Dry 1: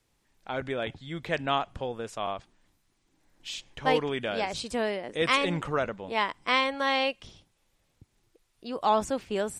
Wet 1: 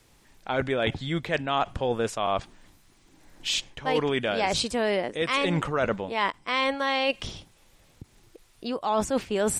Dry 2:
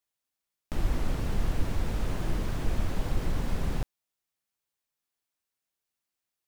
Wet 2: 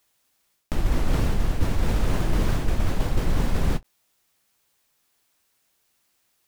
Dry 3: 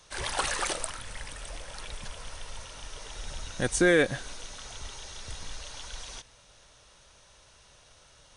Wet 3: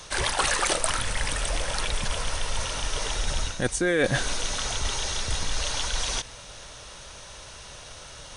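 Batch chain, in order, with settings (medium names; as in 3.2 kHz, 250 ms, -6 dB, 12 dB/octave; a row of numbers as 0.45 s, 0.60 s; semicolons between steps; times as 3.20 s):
reverse; compression 8:1, threshold -35 dBFS; reverse; endings held to a fixed fall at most 590 dB/s; normalise loudness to -27 LUFS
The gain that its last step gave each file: +12.5 dB, +17.5 dB, +14.0 dB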